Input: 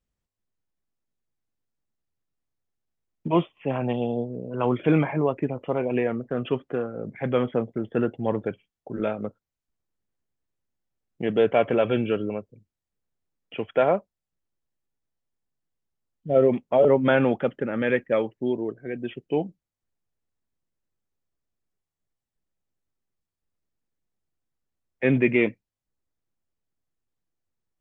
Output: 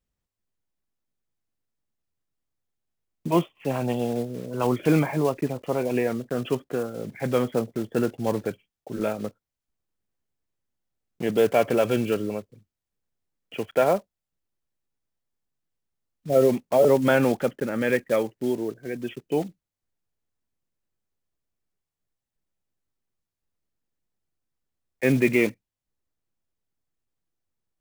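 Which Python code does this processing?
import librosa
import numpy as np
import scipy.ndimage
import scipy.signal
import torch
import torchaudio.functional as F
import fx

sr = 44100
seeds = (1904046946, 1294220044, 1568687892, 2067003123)

y = fx.block_float(x, sr, bits=5)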